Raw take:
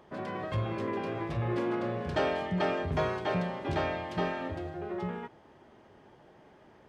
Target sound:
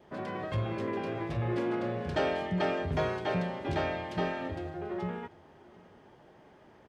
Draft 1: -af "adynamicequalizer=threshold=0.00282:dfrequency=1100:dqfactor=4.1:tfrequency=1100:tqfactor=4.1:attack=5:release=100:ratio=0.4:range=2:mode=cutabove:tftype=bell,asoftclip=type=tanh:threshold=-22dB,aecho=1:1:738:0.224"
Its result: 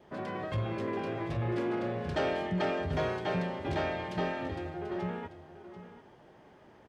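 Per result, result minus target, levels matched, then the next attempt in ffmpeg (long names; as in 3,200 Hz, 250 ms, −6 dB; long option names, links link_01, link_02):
soft clipping: distortion +20 dB; echo-to-direct +11 dB
-af "adynamicequalizer=threshold=0.00282:dfrequency=1100:dqfactor=4.1:tfrequency=1100:tqfactor=4.1:attack=5:release=100:ratio=0.4:range=2:mode=cutabove:tftype=bell,asoftclip=type=tanh:threshold=-11dB,aecho=1:1:738:0.224"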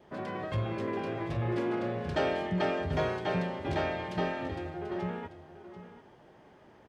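echo-to-direct +11 dB
-af "adynamicequalizer=threshold=0.00282:dfrequency=1100:dqfactor=4.1:tfrequency=1100:tqfactor=4.1:attack=5:release=100:ratio=0.4:range=2:mode=cutabove:tftype=bell,asoftclip=type=tanh:threshold=-11dB,aecho=1:1:738:0.0631"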